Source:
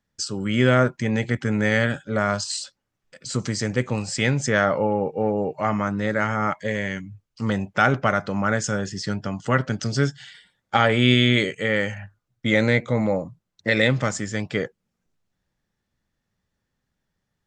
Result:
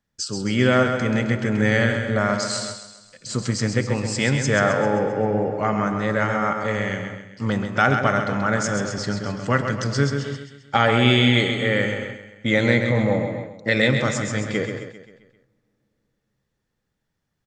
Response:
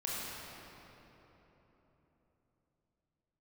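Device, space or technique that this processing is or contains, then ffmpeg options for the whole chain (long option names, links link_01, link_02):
keyed gated reverb: -filter_complex "[0:a]aecho=1:1:132|264|396|528|660|792:0.447|0.228|0.116|0.0593|0.0302|0.0154,asplit=3[link_01][link_02][link_03];[1:a]atrim=start_sample=2205[link_04];[link_02][link_04]afir=irnorm=-1:irlink=0[link_05];[link_03]apad=whole_len=805207[link_06];[link_05][link_06]sidechaingate=range=-24dB:threshold=-33dB:ratio=16:detection=peak,volume=-13.5dB[link_07];[link_01][link_07]amix=inputs=2:normalize=0,volume=-1dB"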